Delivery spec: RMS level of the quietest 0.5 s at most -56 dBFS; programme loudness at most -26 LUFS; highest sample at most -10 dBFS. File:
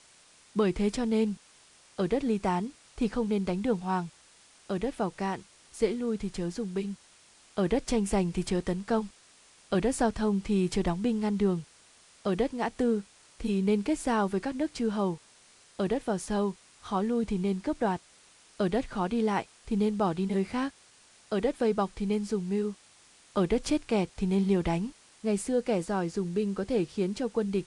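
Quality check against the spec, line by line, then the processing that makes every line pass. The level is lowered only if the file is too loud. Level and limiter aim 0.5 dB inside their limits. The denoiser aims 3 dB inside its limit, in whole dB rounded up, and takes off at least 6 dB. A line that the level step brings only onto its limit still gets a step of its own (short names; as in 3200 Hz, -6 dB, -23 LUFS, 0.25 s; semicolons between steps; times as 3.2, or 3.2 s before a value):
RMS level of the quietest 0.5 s -59 dBFS: OK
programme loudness -30.0 LUFS: OK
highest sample -14.5 dBFS: OK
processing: none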